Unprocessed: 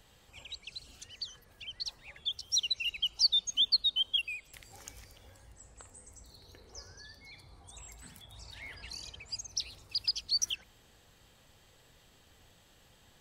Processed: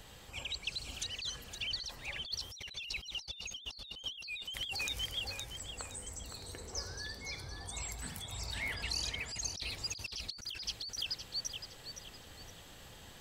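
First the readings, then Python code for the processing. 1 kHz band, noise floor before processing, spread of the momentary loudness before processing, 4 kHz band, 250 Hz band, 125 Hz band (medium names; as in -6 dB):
+8.0 dB, -63 dBFS, 24 LU, -6.5 dB, +8.0 dB, +8.0 dB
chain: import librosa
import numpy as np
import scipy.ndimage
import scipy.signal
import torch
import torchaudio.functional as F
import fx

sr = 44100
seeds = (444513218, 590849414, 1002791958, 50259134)

p1 = x + fx.echo_feedback(x, sr, ms=515, feedback_pct=34, wet_db=-7.5, dry=0)
p2 = fx.over_compress(p1, sr, threshold_db=-43.0, ratio=-1.0)
y = p2 * 10.0 ** (1.5 / 20.0)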